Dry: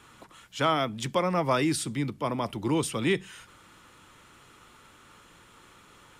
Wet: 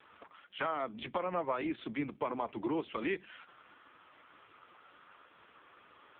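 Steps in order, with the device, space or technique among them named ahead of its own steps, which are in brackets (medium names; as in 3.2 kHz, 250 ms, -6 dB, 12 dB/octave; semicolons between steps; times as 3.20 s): 0.78–2.68 s: dynamic bell 110 Hz, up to +3 dB, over -47 dBFS, Q 3.1; voicemail (band-pass 320–3200 Hz; compression 8:1, threshold -31 dBFS, peak gain reduction 11.5 dB; trim +1.5 dB; AMR-NB 4.75 kbps 8 kHz)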